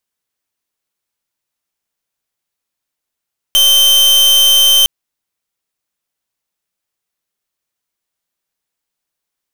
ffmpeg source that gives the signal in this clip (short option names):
-f lavfi -i "aevalsrc='0.376*(2*lt(mod(3110*t,1),0.41)-1)':d=1.31:s=44100"